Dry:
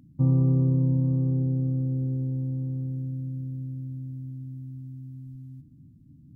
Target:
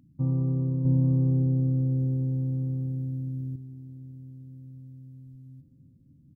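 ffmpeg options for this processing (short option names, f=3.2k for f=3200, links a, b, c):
-filter_complex "[0:a]asettb=1/sr,asplit=3[a][b][c];[a]atrim=end=0.854[d];[b]atrim=start=0.85:end=3.56,asetpts=PTS-STARTPTS,afade=t=in:d=0.004:c=qsin,afade=t=out:st=2.706:d=0.004:c=qsin,acontrast=66[e];[c]atrim=start=3.556[f];[d][e]acrossfade=d=0.004:c1=hsin:c2=qsin[g];[g][f]acrossfade=d=0.004:c1=qsin:c2=hsin,asplit=2[h][i];[i]adelay=951,lowpass=f=910:p=1,volume=-19dB,asplit=2[j][k];[k]adelay=951,lowpass=f=910:p=1,volume=0.52,asplit=2[l][m];[m]adelay=951,lowpass=f=910:p=1,volume=0.52,asplit=2[n][o];[o]adelay=951,lowpass=f=910:p=1,volume=0.52[p];[h][j][l][n][p]amix=inputs=5:normalize=0,volume=-5dB"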